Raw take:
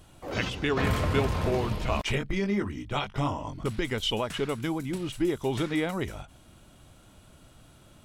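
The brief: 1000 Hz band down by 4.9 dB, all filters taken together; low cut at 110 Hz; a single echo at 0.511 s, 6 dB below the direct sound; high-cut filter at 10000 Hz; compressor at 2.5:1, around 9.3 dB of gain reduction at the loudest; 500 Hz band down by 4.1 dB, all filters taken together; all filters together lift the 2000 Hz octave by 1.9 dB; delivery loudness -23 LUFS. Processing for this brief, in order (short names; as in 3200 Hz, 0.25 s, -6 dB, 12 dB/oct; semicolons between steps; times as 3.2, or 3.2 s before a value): HPF 110 Hz; LPF 10000 Hz; bell 500 Hz -4.5 dB; bell 1000 Hz -6 dB; bell 2000 Hz +4 dB; compressor 2.5:1, threshold -38 dBFS; echo 0.511 s -6 dB; gain +15 dB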